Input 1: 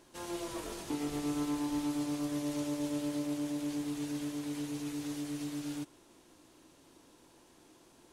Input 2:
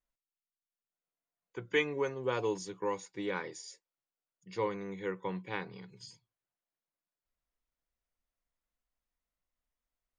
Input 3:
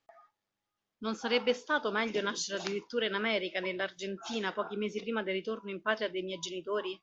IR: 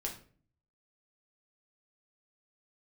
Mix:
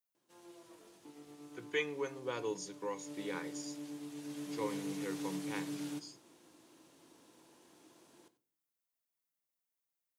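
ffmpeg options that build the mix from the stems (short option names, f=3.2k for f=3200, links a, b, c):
-filter_complex "[0:a]adelay=150,volume=-4.5dB,afade=t=in:st=2.96:d=0.23:silence=0.334965,afade=t=in:st=4.16:d=0.57:silence=0.446684,asplit=3[a][b][c];[b]volume=-8dB[d];[c]volume=-16dB[e];[1:a]aemphasis=mode=production:type=50kf,volume=-9dB,asplit=2[f][g];[g]volume=-8.5dB[h];[3:a]atrim=start_sample=2205[i];[d][h]amix=inputs=2:normalize=0[j];[j][i]afir=irnorm=-1:irlink=0[k];[e]aecho=0:1:93:1[l];[a][f][k][l]amix=inputs=4:normalize=0,highpass=140"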